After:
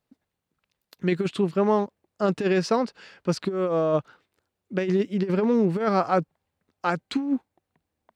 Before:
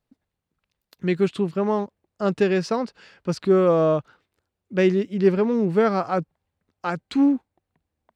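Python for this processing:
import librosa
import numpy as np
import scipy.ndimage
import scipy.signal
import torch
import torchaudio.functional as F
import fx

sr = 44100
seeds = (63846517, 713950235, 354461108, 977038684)

y = fx.over_compress(x, sr, threshold_db=-20.0, ratio=-0.5)
y = fx.low_shelf(y, sr, hz=80.0, db=-11.0)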